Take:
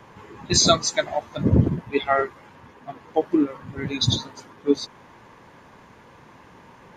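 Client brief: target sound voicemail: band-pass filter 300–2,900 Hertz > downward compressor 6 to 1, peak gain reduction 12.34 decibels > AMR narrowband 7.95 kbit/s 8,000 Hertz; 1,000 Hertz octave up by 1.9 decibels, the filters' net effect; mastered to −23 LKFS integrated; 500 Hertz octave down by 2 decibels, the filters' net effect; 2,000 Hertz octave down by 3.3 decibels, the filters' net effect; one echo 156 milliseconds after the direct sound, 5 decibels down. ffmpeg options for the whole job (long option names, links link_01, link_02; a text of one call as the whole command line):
ffmpeg -i in.wav -af "highpass=300,lowpass=2900,equalizer=frequency=500:width_type=o:gain=-4,equalizer=frequency=1000:width_type=o:gain=6.5,equalizer=frequency=2000:width_type=o:gain=-5,aecho=1:1:156:0.562,acompressor=threshold=-25dB:ratio=6,volume=10dB" -ar 8000 -c:a libopencore_amrnb -b:a 7950 out.amr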